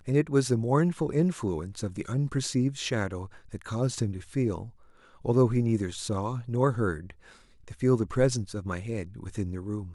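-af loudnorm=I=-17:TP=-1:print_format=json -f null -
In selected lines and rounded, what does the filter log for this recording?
"input_i" : "-28.8",
"input_tp" : "-10.4",
"input_lra" : "3.4",
"input_thresh" : "-39.5",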